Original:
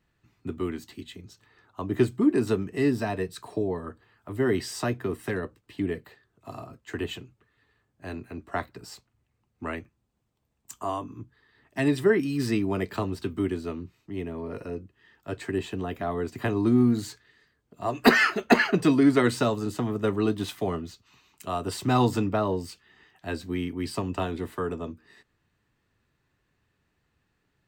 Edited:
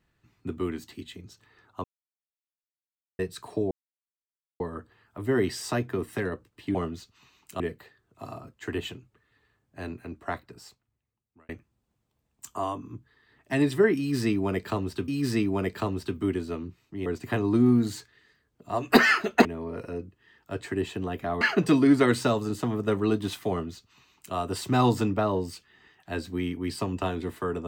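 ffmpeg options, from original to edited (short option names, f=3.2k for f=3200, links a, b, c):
-filter_complex "[0:a]asplit=11[a][b][c][d][e][f][g][h][i][j][k];[a]atrim=end=1.84,asetpts=PTS-STARTPTS,afade=t=out:st=1.836:d=0.004:c=hsin[l];[b]atrim=start=1.84:end=3.19,asetpts=PTS-STARTPTS,volume=0[m];[c]atrim=start=3.19:end=3.71,asetpts=PTS-STARTPTS,afade=t=in:d=0.004:c=hsin,afade=t=out:st=0.516:d=0.004:c=hsin,apad=pad_dur=0.89[n];[d]atrim=start=3.71:end=5.862,asetpts=PTS-STARTPTS,afade=t=in:d=0.004:c=hsin[o];[e]atrim=start=20.658:end=21.512[p];[f]atrim=start=5.858:end=9.75,asetpts=PTS-STARTPTS,afade=t=out:st=2.382:d=1.51[q];[g]atrim=start=9.75:end=13.342,asetpts=PTS-STARTPTS,afade=t=in:d=0.004:c=hsin[r];[h]atrim=start=12.238:end=14.222[s];[i]atrim=start=16.178:end=18.572[t];[j]atrim=start=14.218:end=16.182[u];[k]atrim=start=18.568[v];[l][m][n][o]concat=n=4:v=0:a=1[w];[w][p]acrossfade=d=0.004:c1=hsin:c2=hsin[x];[q][r]concat=n=2:v=0:a=1[y];[x][y]acrossfade=d=0.004:c1=hsin:c2=hsin[z];[z][s]acrossfade=d=0.004:c1=hsin:c2=hsin[aa];[aa][t]acrossfade=d=0.004:c1=hsin:c2=hsin[ab];[ab][u]acrossfade=d=0.004:c1=hsin:c2=hsin[ac];[ac][v]acrossfade=d=0.004:c1=hsin:c2=hsin"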